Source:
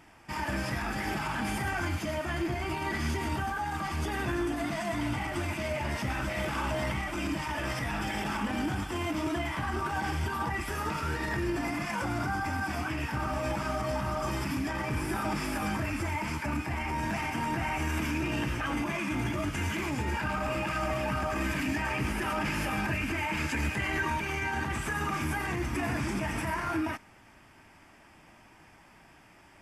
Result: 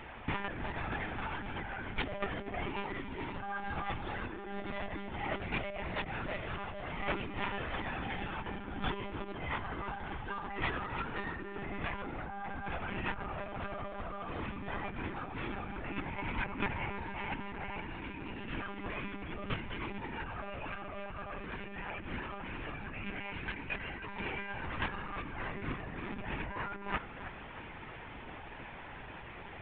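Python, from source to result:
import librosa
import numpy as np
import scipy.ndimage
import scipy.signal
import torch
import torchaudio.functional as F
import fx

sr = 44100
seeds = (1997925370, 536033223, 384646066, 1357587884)

y = scipy.signal.sosfilt(scipy.signal.butter(2, 70.0, 'highpass', fs=sr, output='sos'), x)
y = fx.over_compress(y, sr, threshold_db=-38.0, ratio=-0.5)
y = fx.echo_wet_lowpass(y, sr, ms=313, feedback_pct=42, hz=2300.0, wet_db=-10)
y = fx.lpc_monotone(y, sr, seeds[0], pitch_hz=200.0, order=16)
y = F.gain(torch.from_numpy(y), 1.0).numpy()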